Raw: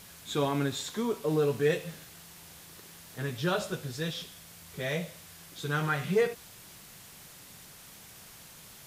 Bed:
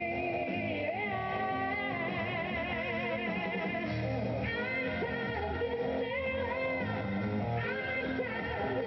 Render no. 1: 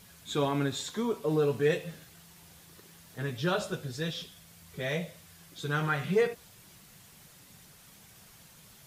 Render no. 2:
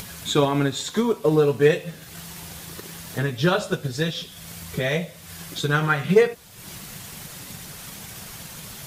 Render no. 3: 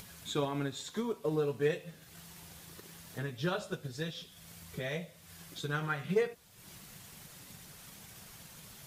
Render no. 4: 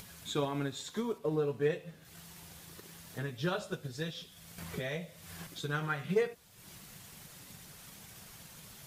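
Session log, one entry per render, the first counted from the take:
broadband denoise 6 dB, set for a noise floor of −51 dBFS
in parallel at +2.5 dB: upward compression, threshold −30 dBFS; on the sum: transient designer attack +5 dB, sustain −2 dB
level −13.5 dB
0:01.18–0:02.05: high-shelf EQ 3,100 Hz −6.5 dB; 0:04.58–0:05.47: multiband upward and downward compressor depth 70%

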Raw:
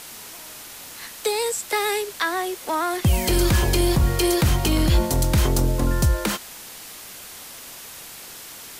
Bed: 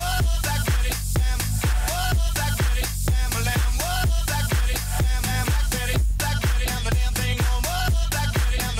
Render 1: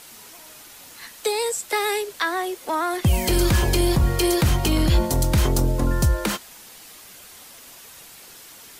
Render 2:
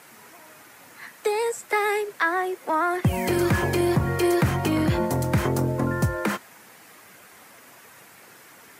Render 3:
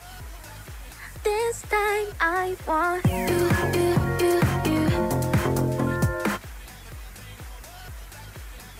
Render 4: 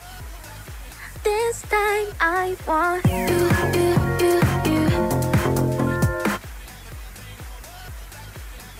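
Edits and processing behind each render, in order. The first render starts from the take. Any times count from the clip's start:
broadband denoise 6 dB, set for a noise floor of −40 dBFS
high-pass filter 98 Hz 24 dB per octave; high shelf with overshoot 2,600 Hz −8 dB, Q 1.5
mix in bed −19 dB
level +3 dB

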